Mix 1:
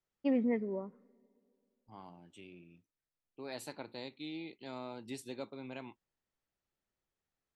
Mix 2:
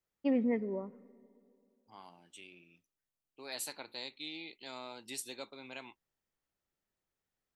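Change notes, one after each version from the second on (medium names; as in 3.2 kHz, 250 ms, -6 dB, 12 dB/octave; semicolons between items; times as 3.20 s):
first voice: send +7.5 dB; second voice: add tilt EQ +3.5 dB/octave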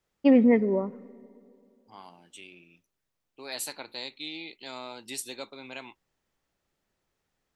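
first voice +11.5 dB; second voice +5.5 dB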